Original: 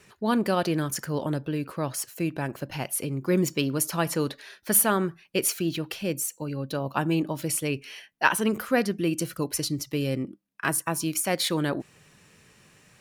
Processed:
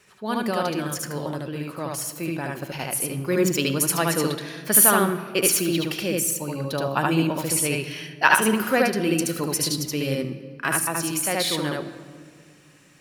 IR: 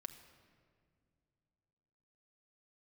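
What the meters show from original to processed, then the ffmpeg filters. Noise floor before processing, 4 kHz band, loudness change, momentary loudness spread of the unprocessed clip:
−59 dBFS, +5.0 dB, +4.5 dB, 8 LU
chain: -filter_complex "[0:a]lowshelf=frequency=370:gain=-6,dynaudnorm=framelen=690:gausssize=9:maxgain=11.5dB,asplit=2[link_01][link_02];[1:a]atrim=start_sample=2205,adelay=74[link_03];[link_02][link_03]afir=irnorm=-1:irlink=0,volume=4dB[link_04];[link_01][link_04]amix=inputs=2:normalize=0,volume=-1dB"

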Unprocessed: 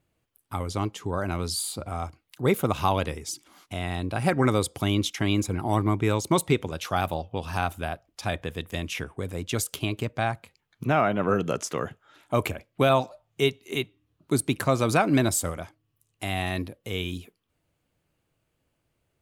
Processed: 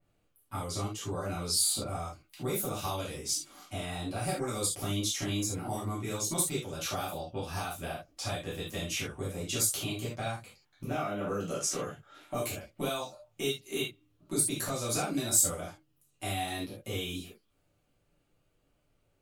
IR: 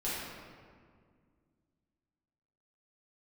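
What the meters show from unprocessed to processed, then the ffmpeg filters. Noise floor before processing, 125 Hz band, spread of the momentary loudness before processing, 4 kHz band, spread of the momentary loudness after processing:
−76 dBFS, −9.0 dB, 12 LU, −2.0 dB, 11 LU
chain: -filter_complex "[0:a]acrossover=split=4500[link_01][link_02];[link_01]acompressor=threshold=-33dB:ratio=5[link_03];[link_03][link_02]amix=inputs=2:normalize=0[link_04];[1:a]atrim=start_sample=2205,afade=type=out:start_time=0.19:duration=0.01,atrim=end_sample=8820,asetrate=70560,aresample=44100[link_05];[link_04][link_05]afir=irnorm=-1:irlink=0,adynamicequalizer=threshold=0.00316:dfrequency=3900:dqfactor=0.7:tfrequency=3900:tqfactor=0.7:attack=5:release=100:ratio=0.375:range=3:mode=boostabove:tftype=highshelf"

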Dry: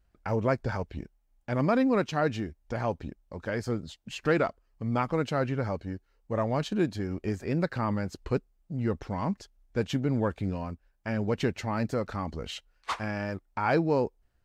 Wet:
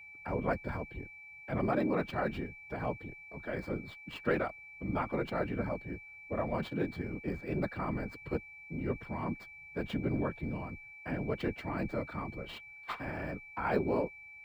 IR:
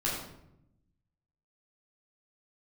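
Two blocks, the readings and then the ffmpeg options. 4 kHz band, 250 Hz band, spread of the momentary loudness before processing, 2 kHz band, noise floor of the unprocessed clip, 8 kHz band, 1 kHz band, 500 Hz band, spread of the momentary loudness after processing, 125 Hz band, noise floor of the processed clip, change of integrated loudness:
−9.0 dB, −6.0 dB, 13 LU, −3.5 dB, −70 dBFS, below −15 dB, −5.5 dB, −6.0 dB, 11 LU, −7.5 dB, −52 dBFS, −6.0 dB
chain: -filter_complex "[0:a]afftfilt=real='hypot(re,im)*cos(2*PI*random(0))':imag='hypot(re,im)*sin(2*PI*random(1))':win_size=512:overlap=0.75,aeval=exprs='val(0)+0.00398*sin(2*PI*2300*n/s)':channel_layout=same,afreqshift=15,acrossover=split=200|4300[link_01][link_02][link_03];[link_03]acrusher=samples=14:mix=1:aa=0.000001[link_04];[link_01][link_02][link_04]amix=inputs=3:normalize=0"

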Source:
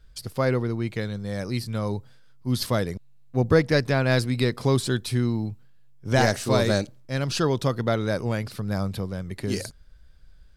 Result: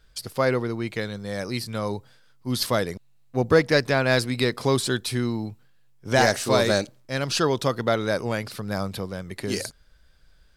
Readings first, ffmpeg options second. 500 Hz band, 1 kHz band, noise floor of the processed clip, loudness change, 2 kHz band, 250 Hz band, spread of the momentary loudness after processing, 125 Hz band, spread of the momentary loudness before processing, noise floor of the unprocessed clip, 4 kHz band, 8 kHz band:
+2.0 dB, +3.0 dB, −56 dBFS, +1.0 dB, +3.5 dB, −1.0 dB, 12 LU, −4.0 dB, 10 LU, −50 dBFS, +3.5 dB, +3.5 dB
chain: -filter_complex "[0:a]lowshelf=frequency=220:gain=-10.5,asplit=2[link_01][link_02];[link_02]volume=14dB,asoftclip=hard,volume=-14dB,volume=-5.5dB[link_03];[link_01][link_03]amix=inputs=2:normalize=0"

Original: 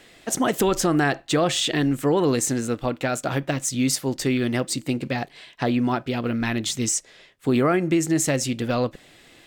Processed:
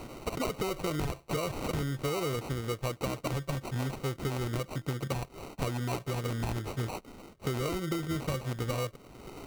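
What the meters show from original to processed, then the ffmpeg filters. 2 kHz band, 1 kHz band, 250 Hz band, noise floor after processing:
−12.0 dB, −10.0 dB, −14.0 dB, −56 dBFS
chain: -af "equalizer=frequency=760:width=1.7:gain=-9.5,acompressor=mode=upward:threshold=-37dB:ratio=2.5,equalizer=frequency=125:width_type=o:width=1:gain=7,equalizer=frequency=250:width_type=o:width=1:gain=-11,equalizer=frequency=500:width_type=o:width=1:gain=6,equalizer=frequency=1000:width_type=o:width=1:gain=4,equalizer=frequency=2000:width_type=o:width=1:gain=7,equalizer=frequency=4000:width_type=o:width=1:gain=-8,equalizer=frequency=8000:width_type=o:width=1:gain=-11,acrusher=samples=26:mix=1:aa=0.000001,acompressor=threshold=-30dB:ratio=6"

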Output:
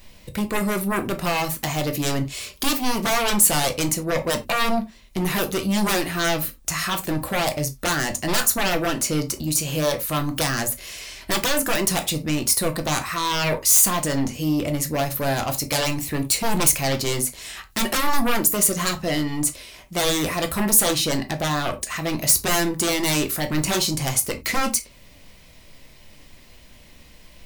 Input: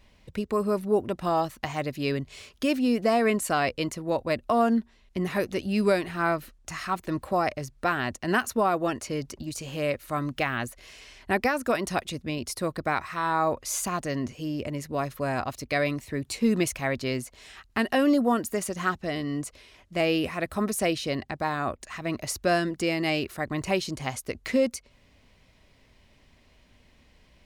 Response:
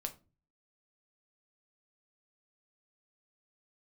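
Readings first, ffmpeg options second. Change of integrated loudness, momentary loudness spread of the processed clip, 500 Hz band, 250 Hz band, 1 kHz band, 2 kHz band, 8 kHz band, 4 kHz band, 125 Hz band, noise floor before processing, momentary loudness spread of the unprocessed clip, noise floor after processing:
+6.0 dB, 8 LU, +1.0 dB, +2.5 dB, +2.5 dB, +4.5 dB, +16.5 dB, +11.5 dB, +7.0 dB, −60 dBFS, 9 LU, −49 dBFS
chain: -filter_complex "[0:a]aeval=exprs='0.224*sin(PI/2*3.55*val(0)/0.224)':channel_layout=same,aemphasis=mode=production:type=50fm[link_01];[1:a]atrim=start_sample=2205,afade=type=out:start_time=0.15:duration=0.01,atrim=end_sample=7056[link_02];[link_01][link_02]afir=irnorm=-1:irlink=0,volume=-5dB"

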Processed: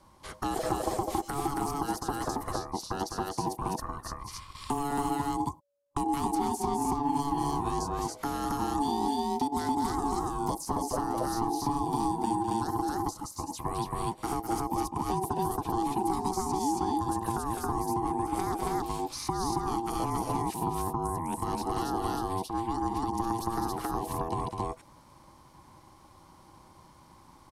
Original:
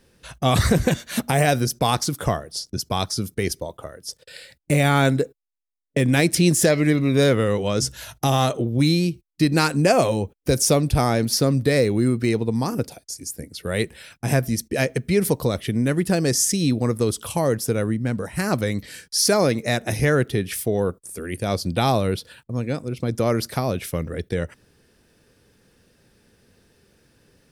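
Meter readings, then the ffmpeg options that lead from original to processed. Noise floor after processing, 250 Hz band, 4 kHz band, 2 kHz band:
−56 dBFS, −9.5 dB, −15.0 dB, −18.0 dB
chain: -filter_complex "[0:a]aresample=32000,aresample=44100,equalizer=frequency=125:width_type=o:width=1:gain=-5,equalizer=frequency=250:width_type=o:width=1:gain=7,equalizer=frequency=500:width_type=o:width=1:gain=8,equalizer=frequency=1000:width_type=o:width=1:gain=5,equalizer=frequency=2000:width_type=o:width=1:gain=-8,acrossover=split=250|5100[link_01][link_02][link_03];[link_02]acompressor=threshold=-23dB:ratio=6[link_04];[link_01][link_04][link_03]amix=inputs=3:normalize=0,equalizer=frequency=120:width_type=o:width=0.92:gain=-14.5,asplit=2[link_05][link_06];[link_06]aecho=0:1:204.1|274.1:0.398|1[link_07];[link_05][link_07]amix=inputs=2:normalize=0,acrossover=split=300|2700[link_08][link_09][link_10];[link_08]acompressor=threshold=-27dB:ratio=4[link_11];[link_09]acompressor=threshold=-34dB:ratio=4[link_12];[link_10]acompressor=threshold=-41dB:ratio=4[link_13];[link_11][link_12][link_13]amix=inputs=3:normalize=0,aeval=exprs='val(0)*sin(2*PI*570*n/s)':channel_layout=same"

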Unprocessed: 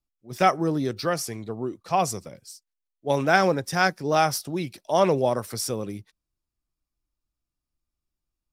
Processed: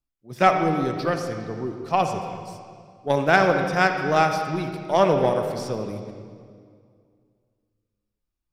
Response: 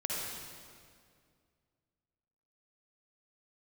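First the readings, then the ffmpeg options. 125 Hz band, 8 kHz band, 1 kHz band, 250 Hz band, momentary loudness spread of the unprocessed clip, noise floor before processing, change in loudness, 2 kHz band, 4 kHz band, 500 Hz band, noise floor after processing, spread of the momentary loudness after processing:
+2.0 dB, −9.0 dB, +2.5 dB, +1.5 dB, 16 LU, below −85 dBFS, +2.0 dB, +3.0 dB, −1.5 dB, +2.5 dB, −83 dBFS, 16 LU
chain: -filter_complex "[0:a]acrossover=split=5600[link_01][link_02];[link_02]acompressor=threshold=-45dB:ratio=4:attack=1:release=60[link_03];[link_01][link_03]amix=inputs=2:normalize=0,aeval=exprs='0.668*(cos(1*acos(clip(val(0)/0.668,-1,1)))-cos(1*PI/2))+0.015*(cos(6*acos(clip(val(0)/0.668,-1,1)))-cos(6*PI/2))+0.0335*(cos(7*acos(clip(val(0)/0.668,-1,1)))-cos(7*PI/2))':channel_layout=same,asplit=2[link_04][link_05];[1:a]atrim=start_sample=2205,lowpass=4300[link_06];[link_05][link_06]afir=irnorm=-1:irlink=0,volume=-6dB[link_07];[link_04][link_07]amix=inputs=2:normalize=0"

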